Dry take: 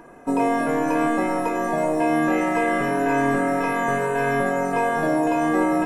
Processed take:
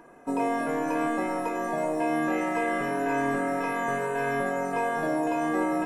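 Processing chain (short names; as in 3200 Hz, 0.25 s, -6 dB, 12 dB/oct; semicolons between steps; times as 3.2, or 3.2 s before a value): low shelf 140 Hz -6 dB; gain -5.5 dB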